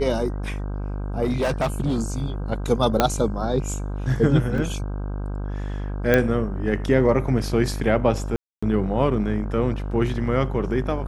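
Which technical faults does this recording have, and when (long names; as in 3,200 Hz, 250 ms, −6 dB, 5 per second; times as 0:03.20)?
mains buzz 50 Hz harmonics 32 −28 dBFS
0:01.23–0:02.26: clipping −18 dBFS
0:03.00: click −3 dBFS
0:04.58: drop-out 2.6 ms
0:06.14: click −6 dBFS
0:08.36–0:08.62: drop-out 265 ms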